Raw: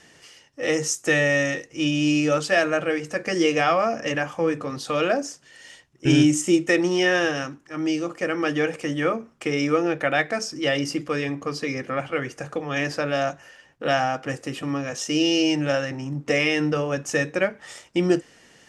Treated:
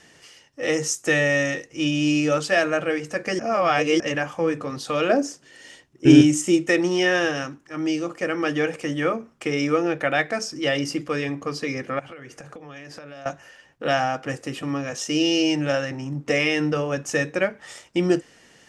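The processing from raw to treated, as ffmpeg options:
-filter_complex "[0:a]asettb=1/sr,asplit=3[a][b][c];[a]atrim=end=5.094[d];[b]atrim=start=5.09:end=6.21,asetpts=PTS-STARTPTS,afade=t=in:d=0.004:c=qsin,afade=t=out:st=1.116:d=0.004:c=qsin,equalizer=f=320:t=o:w=1.4:g=7.5[e];[c]atrim=start=6.206[f];[d][e]acrossfade=d=0.004:c1=hsin:c2=qsin[g];[g][f]acrossfade=d=0.004:c1=qsin:c2=hsin,asettb=1/sr,asplit=3[h][i][j];[h]atrim=end=11.994[k];[i]atrim=start=11.99:end=13.26,asetpts=PTS-STARTPTS,afade=t=in:d=0.004:c=qsin,afade=t=out:st=1.266:d=0.004:c=qsin,acompressor=threshold=-36dB:ratio=12:attack=3.2:release=140:knee=1:detection=peak[l];[j]atrim=start=13.256[m];[k][l]acrossfade=d=0.004:c1=hsin:c2=qsin[n];[n][m]acrossfade=d=0.004:c1=qsin:c2=hsin,asplit=3[o][p][q];[o]atrim=end=3.392[r];[p]atrim=start=3.388:end=4.002,asetpts=PTS-STARTPTS,areverse[s];[q]atrim=start=3.998[t];[r][s]acrossfade=d=0.004:c1=hsin:c2=hsin[u];[u][t]acrossfade=d=0.004:c1=hsin:c2=hsin"

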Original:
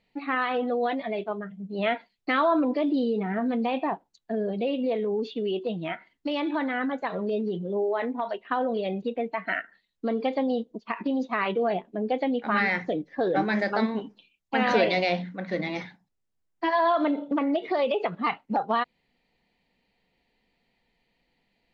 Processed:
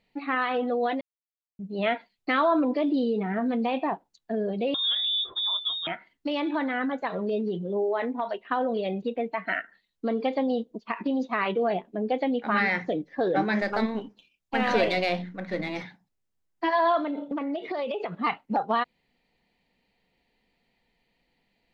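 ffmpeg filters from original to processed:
-filter_complex "[0:a]asettb=1/sr,asplit=3[a][b][c];[a]atrim=end=4.744[d];[b]atrim=start=4.74:end=5.87,asetpts=PTS-STARTPTS,afade=t=in:d=0.004:c=qsin,afade=t=out:st=1.126:d=0.004:c=qsin,lowpass=f=3.3k:t=q:w=0.5098,lowpass=f=3.3k:t=q:w=0.6013,lowpass=f=3.3k:t=q:w=0.9,lowpass=f=3.3k:t=q:w=2.563,afreqshift=-3900[e];[c]atrim=start=5.866[f];[d][e]acrossfade=d=0.004:c1=hsin:c2=qsin[g];[g][f]acrossfade=d=0.004:c1=qsin:c2=hsin,asettb=1/sr,asplit=3[h][i][j];[h]atrim=end=13.614[k];[i]atrim=start=13.61:end=15.83,asetpts=PTS-STARTPTS,afade=t=in:d=0.004:c=qsin,afade=t=out:st=2.216:d=0.004:c=qsin,aeval=exprs='if(lt(val(0),0),0.708*val(0),val(0))':c=same[l];[j]atrim=start=15.826[m];[k][l]acrossfade=d=0.004:c1=hsin:c2=qsin[n];[n][m]acrossfade=d=0.004:c1=qsin:c2=hsin,asettb=1/sr,asplit=3[o][p][q];[o]atrim=end=16.994[r];[p]atrim=start=16.99:end=18.14,asetpts=PTS-STARTPTS,afade=t=in:d=0.004:c=qsin,afade=t=out:st=1.146:d=0.004:c=qsin,acompressor=threshold=-27dB:ratio=5:attack=3.2:release=140:knee=1:detection=peak[s];[q]atrim=start=18.136[t];[r][s]acrossfade=d=0.004:c1=hsin:c2=qsin[u];[u][t]acrossfade=d=0.004:c1=qsin:c2=hsin,asplit=3[v][w][x];[v]atrim=end=1.01,asetpts=PTS-STARTPTS,afade=t=out:st=1.006:d=0.004:c=hsin[y];[w]atrim=start=1.01:end=1.59,asetpts=PTS-STARTPTS,volume=0[z];[x]atrim=start=1.59,asetpts=PTS-STARTPTS,afade=t=in:d=0.004:c=hsin[aa];[y][z][aa]concat=n=3:v=0:a=1"

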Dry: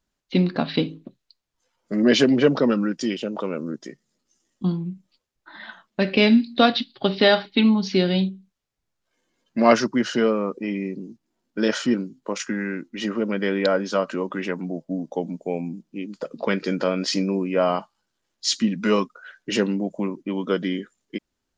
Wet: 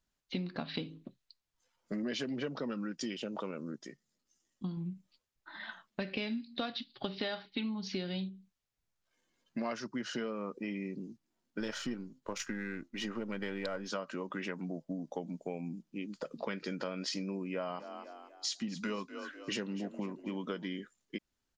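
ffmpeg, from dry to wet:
-filter_complex "[0:a]asettb=1/sr,asplit=3[a][b][c];[a]atrim=end=11.604[d];[b]atrim=start=11.6:end=13.88,asetpts=PTS-STARTPTS,afade=t=in:d=0.004:c=qsin,afade=t=out:st=2.276:d=0.004:c=qsin,aeval=exprs='if(lt(val(0),0),0.708*val(0),val(0))':c=same[e];[c]atrim=start=13.876[f];[d][e]acrossfade=d=0.004:c1=hsin:c2=qsin[g];[g][f]acrossfade=d=0.004:c1=qsin:c2=hsin,asplit=3[h][i][j];[h]afade=t=out:st=17.78:d=0.02[k];[i]asplit=5[l][m][n][o][p];[m]adelay=247,afreqshift=36,volume=-16dB[q];[n]adelay=494,afreqshift=72,volume=-24dB[r];[o]adelay=741,afreqshift=108,volume=-31.9dB[s];[p]adelay=988,afreqshift=144,volume=-39.9dB[t];[l][q][r][s][t]amix=inputs=5:normalize=0,afade=t=in:st=17.78:d=0.02,afade=t=out:st=20.7:d=0.02[u];[j]afade=t=in:st=20.7:d=0.02[v];[k][u][v]amix=inputs=3:normalize=0,asplit=3[w][x][y];[w]atrim=end=3.512[z];[x]atrim=start=3.508:end=4.772,asetpts=PTS-STARTPTS,volume=-3dB[aa];[y]atrim=start=4.768[ab];[z][aa]acrossfade=d=0.004:c1=hsin:c2=hsin[ac];[ac][ab]acrossfade=d=0.004:c1=hsin:c2=hsin,equalizer=f=390:t=o:w=2.2:g=-4,acompressor=threshold=-30dB:ratio=6,volume=-4.5dB"

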